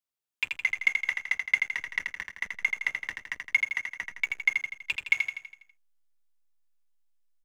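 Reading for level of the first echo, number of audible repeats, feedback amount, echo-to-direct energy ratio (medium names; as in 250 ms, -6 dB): -5.0 dB, 6, 52%, -3.5 dB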